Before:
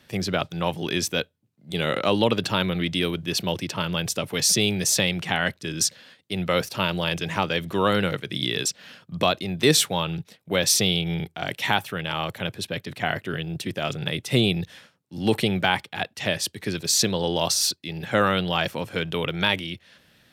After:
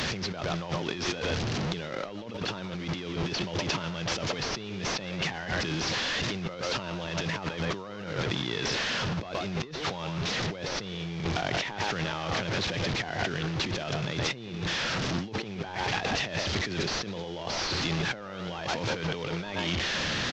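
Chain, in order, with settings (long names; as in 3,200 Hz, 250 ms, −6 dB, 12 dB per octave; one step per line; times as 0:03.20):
linear delta modulator 32 kbit/s, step −29.5 dBFS
far-end echo of a speakerphone 120 ms, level −9 dB
compressor whose output falls as the input rises −33 dBFS, ratio −1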